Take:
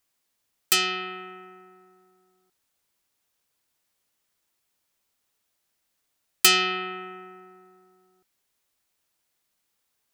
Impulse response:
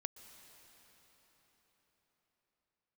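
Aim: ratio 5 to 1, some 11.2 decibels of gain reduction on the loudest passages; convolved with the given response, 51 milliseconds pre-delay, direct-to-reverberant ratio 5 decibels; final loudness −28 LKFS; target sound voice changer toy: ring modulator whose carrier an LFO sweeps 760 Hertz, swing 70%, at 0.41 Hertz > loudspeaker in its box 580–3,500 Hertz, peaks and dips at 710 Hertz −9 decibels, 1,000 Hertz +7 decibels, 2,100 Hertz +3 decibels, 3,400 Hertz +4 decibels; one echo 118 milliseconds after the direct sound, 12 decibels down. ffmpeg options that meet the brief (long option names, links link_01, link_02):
-filter_complex "[0:a]acompressor=threshold=-25dB:ratio=5,aecho=1:1:118:0.251,asplit=2[link_01][link_02];[1:a]atrim=start_sample=2205,adelay=51[link_03];[link_02][link_03]afir=irnorm=-1:irlink=0,volume=-2dB[link_04];[link_01][link_04]amix=inputs=2:normalize=0,aeval=exprs='val(0)*sin(2*PI*760*n/s+760*0.7/0.41*sin(2*PI*0.41*n/s))':channel_layout=same,highpass=580,equalizer=frequency=710:width_type=q:width=4:gain=-9,equalizer=frequency=1000:width_type=q:width=4:gain=7,equalizer=frequency=2100:width_type=q:width=4:gain=3,equalizer=frequency=3400:width_type=q:width=4:gain=4,lowpass=frequency=3500:width=0.5412,lowpass=frequency=3500:width=1.3066,volume=5dB"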